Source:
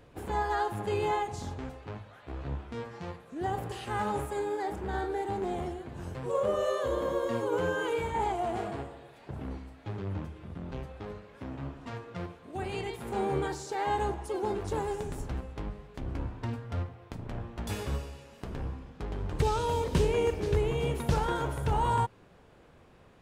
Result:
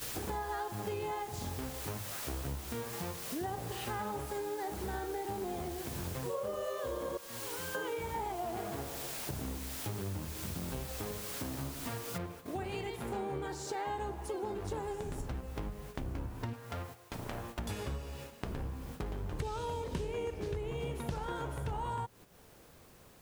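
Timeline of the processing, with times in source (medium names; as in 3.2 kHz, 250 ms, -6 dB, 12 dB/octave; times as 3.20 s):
7.17–7.75 s: amplifier tone stack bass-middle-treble 5-5-5
12.18 s: noise floor step -47 dB -62 dB
16.53–17.59 s: bass shelf 330 Hz -11.5 dB
whole clip: gate -49 dBFS, range -10 dB; compression 5:1, threshold -45 dBFS; trim +8 dB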